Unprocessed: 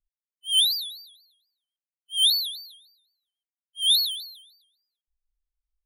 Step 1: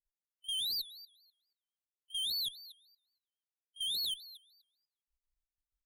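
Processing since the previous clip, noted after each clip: level held to a coarse grid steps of 16 dB; Chebyshev shaper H 2 -14 dB, 4 -14 dB, 6 -23 dB, 7 -44 dB, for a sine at -24 dBFS; trim -3 dB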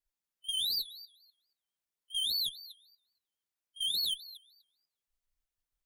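flange 0.46 Hz, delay 2.8 ms, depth 8.8 ms, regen -49%; trim +7 dB

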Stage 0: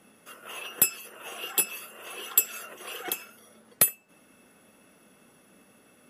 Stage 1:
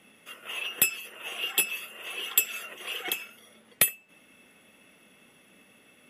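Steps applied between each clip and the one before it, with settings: high-order bell 2.6 kHz +8.5 dB 1.1 oct; trim -2 dB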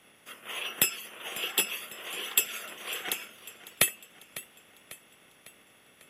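spectral peaks clipped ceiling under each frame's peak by 12 dB; modulated delay 549 ms, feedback 52%, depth 79 cents, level -16.5 dB; trim -1.5 dB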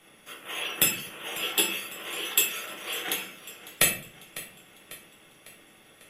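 simulated room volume 44 m³, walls mixed, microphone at 0.71 m

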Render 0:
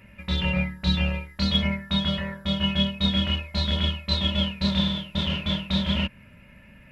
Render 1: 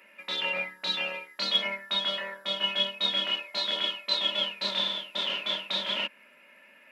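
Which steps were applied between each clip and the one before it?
Bessel high-pass 480 Hz, order 6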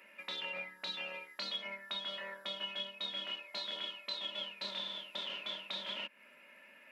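compression 3:1, threshold -38 dBFS, peak gain reduction 13.5 dB; trim -3 dB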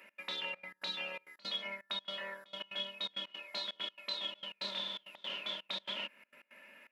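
trance gate "x.xxxx.x.xxxx." 166 bpm -24 dB; trim +1.5 dB

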